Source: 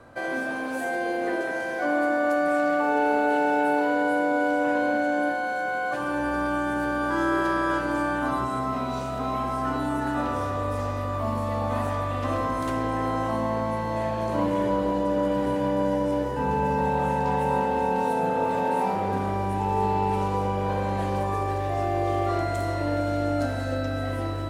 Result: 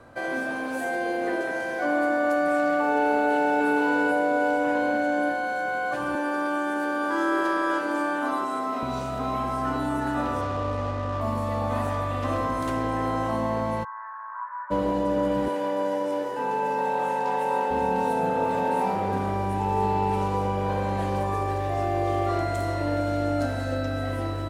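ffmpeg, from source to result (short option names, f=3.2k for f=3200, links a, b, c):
-filter_complex "[0:a]asplit=2[a][b];[b]afade=t=in:st=3.14:d=0.01,afade=t=out:st=3.65:d=0.01,aecho=0:1:460|920|1380|1840:0.630957|0.220835|0.0772923|0.0270523[c];[a][c]amix=inputs=2:normalize=0,asettb=1/sr,asplit=3[d][e][f];[d]atrim=end=6.154[g];[e]atrim=start=6.15:end=8.83,asetpts=PTS-STARTPTS,afade=t=in:d=0.004:c=qsin,afade=t=out:st=2.676:d=0.004:c=qsin,highpass=f=250:w=0.5412,highpass=f=250:w=1.3066[h];[f]atrim=start=8.826[i];[g][h]acrossfade=d=0.004:c1=hsin:c2=qsin[j];[j][i]acrossfade=d=0.004:c1=qsin:c2=hsin,asettb=1/sr,asplit=3[k][l][m];[k]atrim=end=10.414[n];[l]atrim=start=10.41:end=11.21,asetpts=PTS-STARTPTS,afade=t=in:d=0.004:c=qsin,afade=t=out:st=0.796:d=0.004:c=qsin,adynamicsmooth=sensitivity=7.5:basefreq=1k[o];[m]atrim=start=11.206[p];[n][o]acrossfade=d=0.004:c1=hsin:c2=qsin[q];[q][p]acrossfade=d=0.004:c1=qsin:c2=hsin,asplit=3[r][s][t];[r]afade=t=out:st=13.83:d=0.02[u];[s]asuperpass=centerf=1300:order=8:qfactor=1.7,afade=t=in:st=13.83:d=0.02,afade=t=out:st=14.7:d=0.02[v];[t]afade=t=in:st=14.7:d=0.02[w];[u][v][w]amix=inputs=3:normalize=0,asettb=1/sr,asplit=3[x][y][z];[x]atrim=end=15.484[aa];[y]atrim=start=15.48:end=17.71,asetpts=PTS-STARTPTS,afade=t=in:d=0.004:c=qsin,afade=t=out:st=2.226:d=0.004:c=qsin,highpass=360[ab];[z]atrim=start=17.706[ac];[aa][ab]acrossfade=d=0.004:c1=hsin:c2=qsin[ad];[ad][ac]acrossfade=d=0.004:c1=qsin:c2=hsin"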